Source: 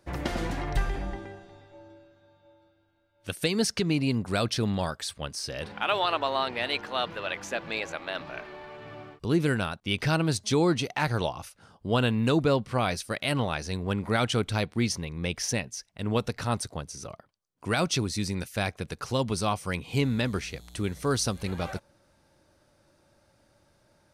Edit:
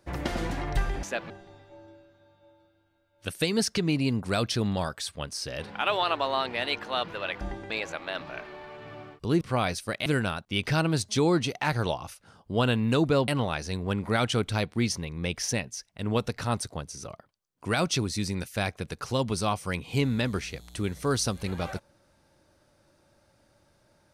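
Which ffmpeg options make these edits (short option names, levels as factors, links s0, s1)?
-filter_complex "[0:a]asplit=8[s0][s1][s2][s3][s4][s5][s6][s7];[s0]atrim=end=1.032[s8];[s1]atrim=start=7.428:end=7.702[s9];[s2]atrim=start=1.318:end=7.432[s10];[s3]atrim=start=1.028:end=1.322[s11];[s4]atrim=start=7.698:end=9.412[s12];[s5]atrim=start=12.628:end=13.282[s13];[s6]atrim=start=9.408:end=12.632[s14];[s7]atrim=start=13.278[s15];[s8][s9]acrossfade=d=0.004:c1=hsin:c2=hsin[s16];[s16][s10]acrossfade=d=0.004:c1=hsin:c2=hsin[s17];[s17][s11]acrossfade=d=0.004:c1=hsin:c2=hsin[s18];[s18][s12]acrossfade=d=0.004:c1=hsin:c2=hsin[s19];[s19][s13]acrossfade=d=0.004:c1=hsin:c2=hsin[s20];[s20][s14]acrossfade=d=0.004:c1=hsin:c2=hsin[s21];[s21][s15]acrossfade=d=0.004:c1=hsin:c2=hsin"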